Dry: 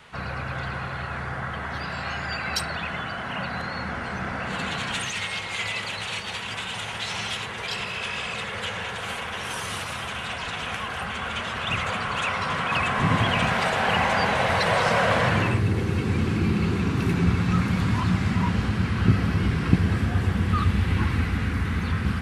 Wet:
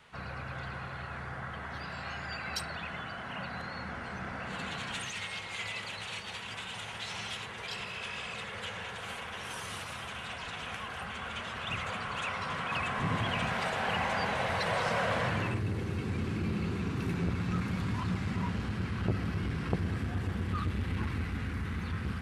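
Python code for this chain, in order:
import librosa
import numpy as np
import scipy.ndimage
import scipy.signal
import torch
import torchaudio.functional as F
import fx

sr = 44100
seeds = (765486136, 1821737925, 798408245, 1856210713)

y = fx.transformer_sat(x, sr, knee_hz=470.0)
y = y * 10.0 ** (-9.0 / 20.0)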